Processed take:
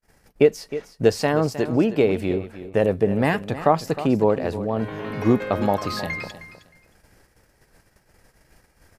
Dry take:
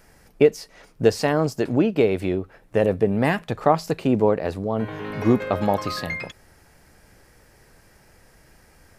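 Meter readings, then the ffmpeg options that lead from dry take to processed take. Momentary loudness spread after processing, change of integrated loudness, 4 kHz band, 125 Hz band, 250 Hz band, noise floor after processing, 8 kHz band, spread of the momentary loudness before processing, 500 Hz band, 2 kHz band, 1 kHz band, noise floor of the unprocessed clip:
9 LU, 0.0 dB, 0.0 dB, 0.0 dB, 0.0 dB, -62 dBFS, 0.0 dB, 8 LU, 0.0 dB, 0.0 dB, 0.0 dB, -55 dBFS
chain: -filter_complex "[0:a]agate=range=-38dB:threshold=-52dB:ratio=16:detection=peak,asplit=2[a][b];[b]aecho=0:1:312|624:0.211|0.0423[c];[a][c]amix=inputs=2:normalize=0"

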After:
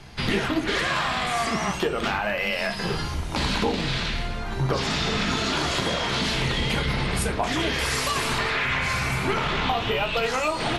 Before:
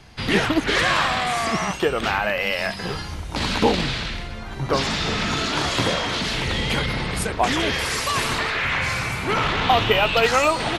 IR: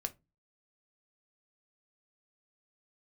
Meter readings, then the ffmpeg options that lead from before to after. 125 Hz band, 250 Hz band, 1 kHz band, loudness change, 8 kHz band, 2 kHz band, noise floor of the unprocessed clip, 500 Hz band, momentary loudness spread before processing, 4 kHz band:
-0.5 dB, -2.0 dB, -4.0 dB, -3.0 dB, -2.5 dB, -3.5 dB, -32 dBFS, -4.0 dB, 8 LU, -3.0 dB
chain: -filter_complex "[0:a]acompressor=threshold=-24dB:ratio=6[a];[1:a]atrim=start_sample=2205,asetrate=26019,aresample=44100[b];[a][b]afir=irnorm=-1:irlink=0"

